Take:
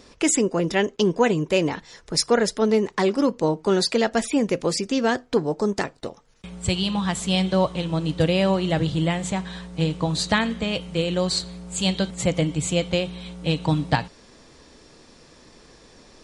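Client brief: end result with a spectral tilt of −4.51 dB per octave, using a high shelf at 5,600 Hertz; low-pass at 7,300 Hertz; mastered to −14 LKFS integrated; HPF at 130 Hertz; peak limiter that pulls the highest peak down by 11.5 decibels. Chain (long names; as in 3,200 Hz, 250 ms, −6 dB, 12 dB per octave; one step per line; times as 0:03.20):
high-pass filter 130 Hz
low-pass filter 7,300 Hz
high-shelf EQ 5,600 Hz +4.5 dB
level +11.5 dB
brickwall limiter −2 dBFS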